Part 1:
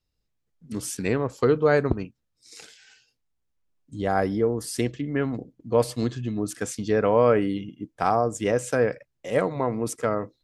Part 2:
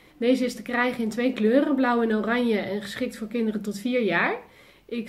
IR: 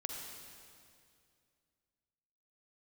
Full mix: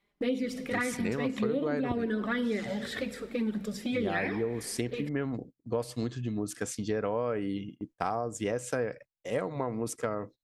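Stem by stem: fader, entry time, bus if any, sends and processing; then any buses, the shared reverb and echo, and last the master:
-3.5 dB, 0.00 s, no send, dry
-1.0 dB, 0.00 s, send -11 dB, high shelf 10000 Hz -6.5 dB; envelope flanger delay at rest 5.2 ms, full sweep at -17 dBFS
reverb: on, RT60 2.3 s, pre-delay 41 ms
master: gate -45 dBFS, range -20 dB; compressor 6:1, threshold -27 dBFS, peak gain reduction 12.5 dB

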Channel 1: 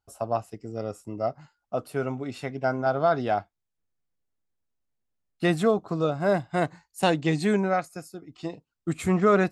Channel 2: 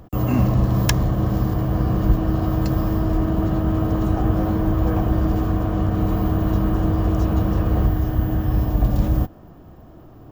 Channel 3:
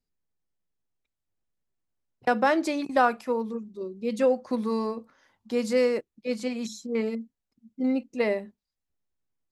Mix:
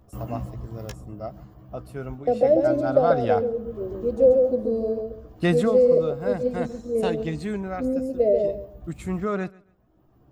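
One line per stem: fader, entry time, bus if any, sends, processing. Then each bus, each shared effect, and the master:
2.63 s -7.5 dB -> 3.24 s 0 dB -> 5.55 s 0 dB -> 5.82 s -8 dB, 0.00 s, no send, echo send -23 dB, low shelf 120 Hz +11.5 dB
-9.5 dB, 0.00 s, no send, no echo send, reverb removal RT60 0.78 s; chorus 0.68 Hz, delay 15 ms, depth 2.3 ms; auto duck -12 dB, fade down 1.50 s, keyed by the first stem
-3.0 dB, 0.00 s, no send, echo send -4 dB, EQ curve 230 Hz 0 dB, 650 Hz +12 dB, 950 Hz -27 dB, 5300 Hz -12 dB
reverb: off
echo: feedback echo 0.137 s, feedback 24%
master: dry

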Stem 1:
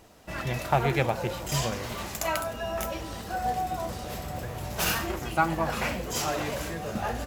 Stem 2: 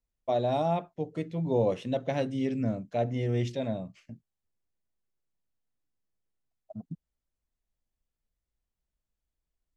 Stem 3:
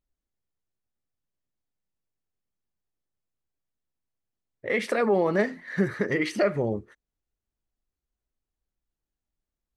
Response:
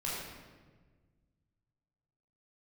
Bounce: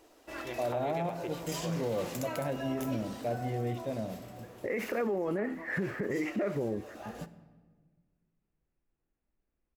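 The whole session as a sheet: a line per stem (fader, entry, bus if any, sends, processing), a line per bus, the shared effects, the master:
-6.5 dB, 0.00 s, send -21 dB, resonant low shelf 230 Hz -9.5 dB, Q 3; de-hum 67.72 Hz, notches 33; compressor, threshold -28 dBFS, peak gain reduction 10.5 dB; auto duck -10 dB, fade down 1.80 s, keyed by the third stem
-4.5 dB, 0.30 s, send -16 dB, LPF 2500 Hz
+2.0 dB, 0.00 s, no send, steep low-pass 2800 Hz 96 dB/oct; bell 330 Hz +6.5 dB 1.7 oct; compressor 4:1, threshold -27 dBFS, peak gain reduction 12 dB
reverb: on, RT60 1.4 s, pre-delay 14 ms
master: limiter -24 dBFS, peak gain reduction 9.5 dB

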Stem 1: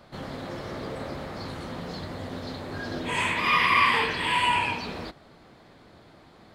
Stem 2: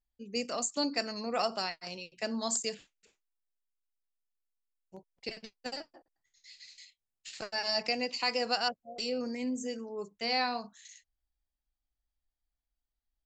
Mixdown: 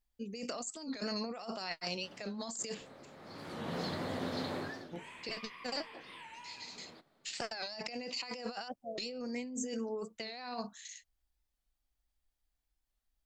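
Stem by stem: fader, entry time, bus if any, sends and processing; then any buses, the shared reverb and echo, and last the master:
-5.0 dB, 1.90 s, no send, HPF 140 Hz; compressor 12:1, threshold -29 dBFS, peak gain reduction 13 dB; auto duck -18 dB, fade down 0.35 s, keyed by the second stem
-0.5 dB, 0.00 s, no send, dry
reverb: off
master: negative-ratio compressor -40 dBFS, ratio -1; record warp 45 rpm, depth 160 cents

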